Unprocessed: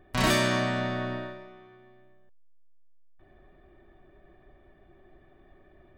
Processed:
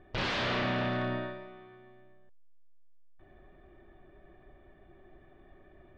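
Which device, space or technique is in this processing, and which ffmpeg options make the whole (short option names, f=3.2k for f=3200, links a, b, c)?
synthesiser wavefolder: -af "aeval=exprs='0.0531*(abs(mod(val(0)/0.0531+3,4)-2)-1)':c=same,lowpass=f=4.1k:w=0.5412,lowpass=f=4.1k:w=1.3066"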